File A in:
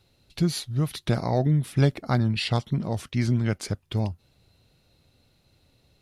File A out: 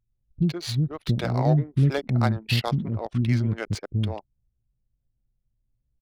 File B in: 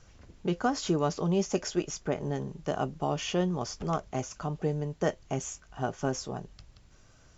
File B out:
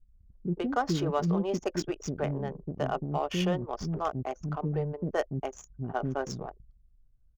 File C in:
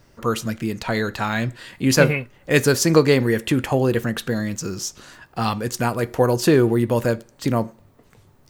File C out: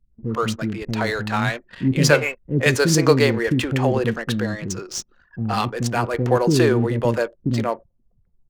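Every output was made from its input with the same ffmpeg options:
-filter_complex "[0:a]acrossover=split=350[link_01][link_02];[link_02]adelay=120[link_03];[link_01][link_03]amix=inputs=2:normalize=0,anlmdn=1,adynamicsmooth=sensitivity=6:basefreq=3100,volume=1.5dB"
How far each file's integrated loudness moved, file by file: +1.0, 0.0, 0.0 LU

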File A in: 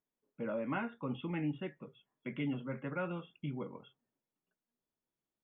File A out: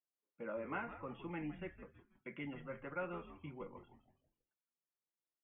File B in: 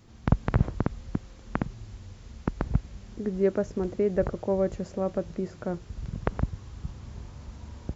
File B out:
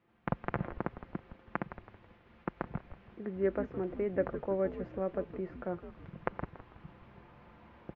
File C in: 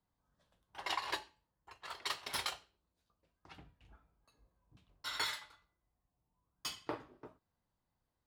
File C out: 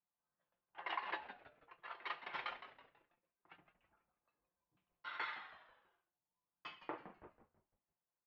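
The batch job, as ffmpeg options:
-filter_complex "[0:a]highpass=frequency=490:poles=1,agate=range=-7dB:threshold=-57dB:ratio=16:detection=peak,lowpass=frequency=2600:width=0.5412,lowpass=frequency=2600:width=1.3066,aecho=1:1:5.8:0.37,asplit=5[link_01][link_02][link_03][link_04][link_05];[link_02]adelay=163,afreqshift=-130,volume=-11.5dB[link_06];[link_03]adelay=326,afreqshift=-260,volume=-19.9dB[link_07];[link_04]adelay=489,afreqshift=-390,volume=-28.3dB[link_08];[link_05]adelay=652,afreqshift=-520,volume=-36.7dB[link_09];[link_01][link_06][link_07][link_08][link_09]amix=inputs=5:normalize=0,volume=-2.5dB"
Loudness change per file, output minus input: −6.5, −7.0, −6.5 LU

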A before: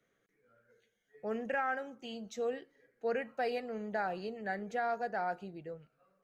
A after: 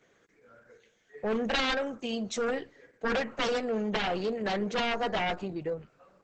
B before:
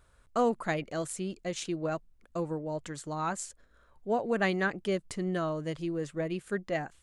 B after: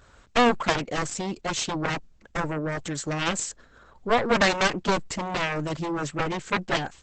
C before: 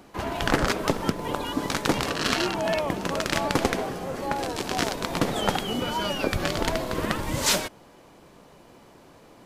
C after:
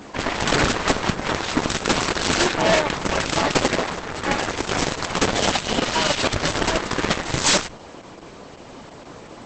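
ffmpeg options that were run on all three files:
-filter_complex "[0:a]lowshelf=frequency=69:gain=-8,asplit=2[link_01][link_02];[link_02]aeval=exprs='0.376*sin(PI/2*4.47*val(0)/0.376)':channel_layout=same,volume=-9.5dB[link_03];[link_01][link_03]amix=inputs=2:normalize=0,aeval=exprs='0.473*(cos(1*acos(clip(val(0)/0.473,-1,1)))-cos(1*PI/2))+0.133*(cos(2*acos(clip(val(0)/0.473,-1,1)))-cos(2*PI/2))+0.133*(cos(7*acos(clip(val(0)/0.473,-1,1)))-cos(7*PI/2))':channel_layout=same,volume=2.5dB" -ar 48000 -c:a libopus -b:a 10k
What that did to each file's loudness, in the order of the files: +6.5, +6.5, +5.5 LU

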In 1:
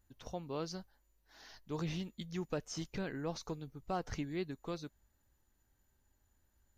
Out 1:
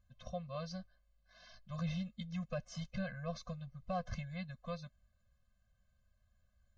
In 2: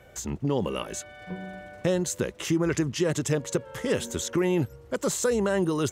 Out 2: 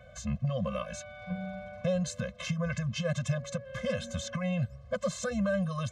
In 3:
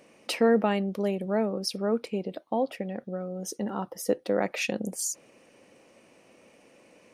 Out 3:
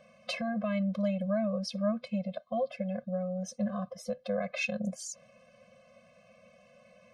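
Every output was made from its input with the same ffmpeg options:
-af "lowpass=4800,alimiter=limit=-19.5dB:level=0:latency=1:release=153,afftfilt=real='re*eq(mod(floor(b*sr/1024/250),2),0)':imag='im*eq(mod(floor(b*sr/1024/250),2),0)':win_size=1024:overlap=0.75,volume=1.5dB"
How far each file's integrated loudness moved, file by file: −1.5, −6.0, −4.5 LU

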